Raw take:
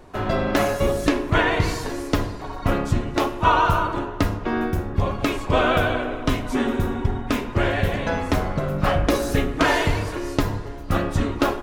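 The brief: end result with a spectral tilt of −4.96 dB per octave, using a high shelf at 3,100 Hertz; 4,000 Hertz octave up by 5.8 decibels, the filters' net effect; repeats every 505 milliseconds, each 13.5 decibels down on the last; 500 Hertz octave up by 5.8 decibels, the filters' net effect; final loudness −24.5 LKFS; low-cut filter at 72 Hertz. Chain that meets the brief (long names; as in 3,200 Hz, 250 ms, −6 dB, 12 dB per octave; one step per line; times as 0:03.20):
high-pass filter 72 Hz
parametric band 500 Hz +7 dB
high-shelf EQ 3,100 Hz +5.5 dB
parametric band 4,000 Hz +3.5 dB
repeating echo 505 ms, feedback 21%, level −13.5 dB
level −5 dB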